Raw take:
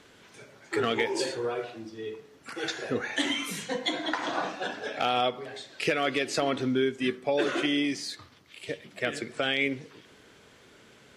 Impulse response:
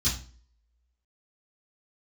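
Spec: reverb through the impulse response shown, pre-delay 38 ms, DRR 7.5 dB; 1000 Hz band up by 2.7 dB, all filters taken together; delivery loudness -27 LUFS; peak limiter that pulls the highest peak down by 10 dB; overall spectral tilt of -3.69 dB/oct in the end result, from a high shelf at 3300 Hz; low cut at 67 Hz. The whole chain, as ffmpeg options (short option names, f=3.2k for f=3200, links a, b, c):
-filter_complex "[0:a]highpass=67,equalizer=f=1k:t=o:g=3.5,highshelf=f=3.3k:g=4.5,alimiter=limit=-22dB:level=0:latency=1,asplit=2[a][b];[1:a]atrim=start_sample=2205,adelay=38[c];[b][c]afir=irnorm=-1:irlink=0,volume=-15.5dB[d];[a][d]amix=inputs=2:normalize=0,volume=4dB"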